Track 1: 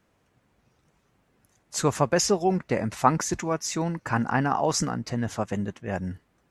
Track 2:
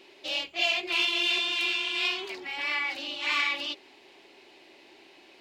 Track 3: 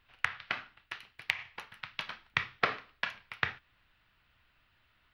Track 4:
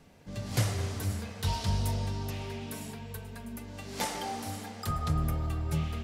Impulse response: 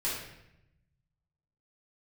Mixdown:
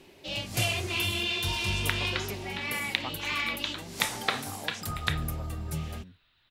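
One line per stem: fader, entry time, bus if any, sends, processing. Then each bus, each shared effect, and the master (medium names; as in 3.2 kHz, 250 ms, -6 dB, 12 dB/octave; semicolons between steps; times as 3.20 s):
-19.5 dB, 0.00 s, no send, none
-4.5 dB, 0.00 s, no send, bass shelf 390 Hz +9 dB
-1.5 dB, 1.65 s, no send, peaking EQ 3.8 kHz +14 dB 0.45 oct
-3.5 dB, 0.00 s, no send, treble shelf 6 kHz +11 dB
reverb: none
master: none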